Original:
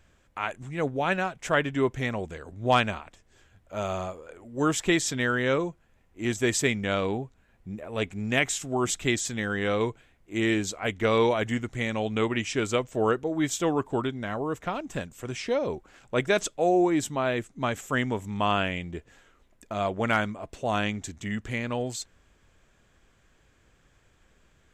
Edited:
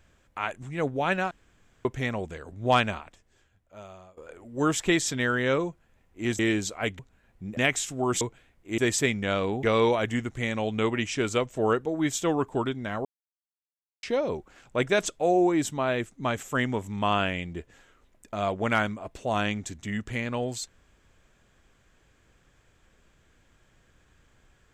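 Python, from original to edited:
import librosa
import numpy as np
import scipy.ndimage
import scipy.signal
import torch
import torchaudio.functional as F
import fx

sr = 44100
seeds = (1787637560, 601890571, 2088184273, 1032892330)

y = fx.edit(x, sr, fx.room_tone_fill(start_s=1.31, length_s=0.54),
    fx.fade_out_to(start_s=3.0, length_s=1.17, curve='qua', floor_db=-18.5),
    fx.swap(start_s=6.39, length_s=0.85, other_s=10.41, other_length_s=0.6),
    fx.cut(start_s=7.82, length_s=0.48),
    fx.cut(start_s=8.94, length_s=0.9),
    fx.silence(start_s=14.43, length_s=0.98), tone=tone)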